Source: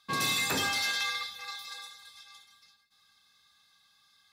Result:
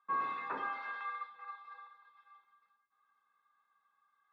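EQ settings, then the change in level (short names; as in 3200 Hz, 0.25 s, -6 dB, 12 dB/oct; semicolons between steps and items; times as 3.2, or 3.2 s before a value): HPF 590 Hz 12 dB/oct; ladder low-pass 1200 Hz, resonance 55%; bell 750 Hz -13 dB 1.4 oct; +11.5 dB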